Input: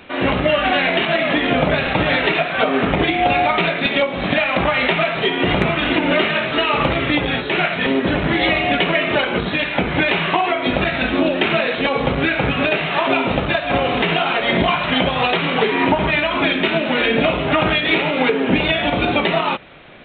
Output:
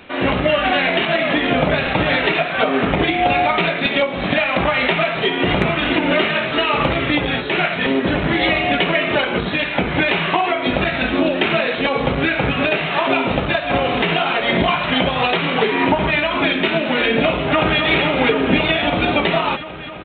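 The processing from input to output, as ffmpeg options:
ffmpeg -i in.wav -filter_complex "[0:a]asplit=2[link_01][link_02];[link_02]afade=type=in:start_time=17.31:duration=0.01,afade=type=out:start_time=17.82:duration=0.01,aecho=0:1:260|520|780|1040|1300|1560|1820|2080|2340|2600|2860|3120:0.473151|0.402179|0.341852|0.290574|0.246988|0.20994|0.178449|0.151681|0.128929|0.10959|0.0931514|0.0791787[link_03];[link_01][link_03]amix=inputs=2:normalize=0" out.wav

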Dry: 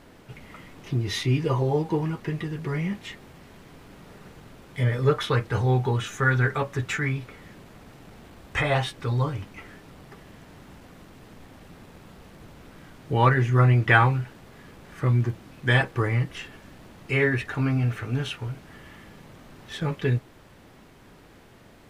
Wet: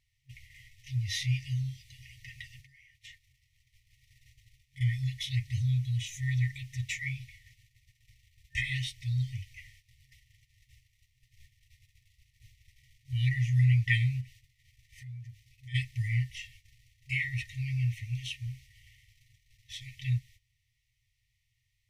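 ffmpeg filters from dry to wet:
ffmpeg -i in.wav -filter_complex "[0:a]asettb=1/sr,asplit=3[link_01][link_02][link_03];[link_01]atrim=end=2.614[link_04];[link_02]atrim=start=2.61:end=4.81,asetpts=PTS-STARTPTS,afade=type=in:duration=0.004:curve=qsin,afade=type=out:start_time=2.196:duration=0.004:curve=qsin,acompressor=threshold=-40dB:ratio=10:attack=3.2:release=140:knee=1:detection=peak[link_05];[link_03]atrim=start=4.806[link_06];[link_04][link_05]acrossfade=duration=0.004:curve1=hsin:curve2=qsin[link_07];[link_07][link_06]acrossfade=duration=0.004:curve1=qsin:curve2=hsin,asplit=3[link_08][link_09][link_10];[link_08]afade=type=out:start_time=14.2:duration=0.02[link_11];[link_09]acompressor=threshold=-36dB:ratio=6:attack=3.2:release=140:knee=1:detection=peak,afade=type=in:start_time=14.2:duration=0.02,afade=type=out:start_time=15.74:duration=0.02[link_12];[link_10]afade=type=in:start_time=15.74:duration=0.02[link_13];[link_11][link_12][link_13]amix=inputs=3:normalize=0,agate=range=-16dB:threshold=-45dB:ratio=16:detection=peak,afftfilt=real='re*(1-between(b*sr/4096,130,1800))':imag='im*(1-between(b*sr/4096,130,1800))':win_size=4096:overlap=0.75,equalizer=frequency=5800:width_type=o:width=0.23:gain=5,volume=-4.5dB" out.wav

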